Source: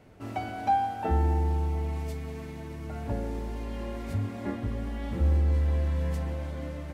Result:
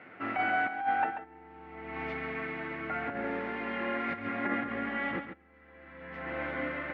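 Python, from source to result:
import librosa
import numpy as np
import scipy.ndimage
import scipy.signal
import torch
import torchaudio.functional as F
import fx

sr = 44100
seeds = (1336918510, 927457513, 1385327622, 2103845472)

y = fx.over_compress(x, sr, threshold_db=-32.0, ratio=-0.5)
y = fx.cabinet(y, sr, low_hz=390.0, low_slope=12, high_hz=2600.0, hz=(420.0, 610.0, 940.0, 1400.0, 2000.0), db=(-8, -7, -6, 6, 7))
y = y + 10.0 ** (-9.0 / 20.0) * np.pad(y, (int(138 * sr / 1000.0), 0))[:len(y)]
y = y * librosa.db_to_amplitude(6.0)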